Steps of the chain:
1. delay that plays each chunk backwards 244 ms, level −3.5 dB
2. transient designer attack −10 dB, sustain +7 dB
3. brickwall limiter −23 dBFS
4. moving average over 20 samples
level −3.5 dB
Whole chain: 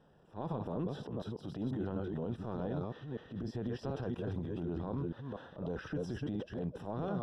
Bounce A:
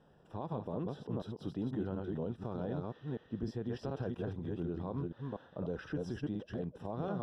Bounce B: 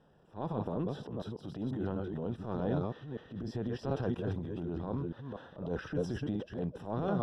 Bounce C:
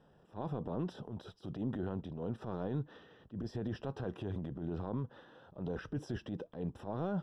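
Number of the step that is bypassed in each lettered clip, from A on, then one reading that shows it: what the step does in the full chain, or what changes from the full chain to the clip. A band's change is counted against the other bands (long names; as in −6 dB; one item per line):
2, change in momentary loudness spread −2 LU
3, change in crest factor +4.0 dB
1, change in integrated loudness −1.5 LU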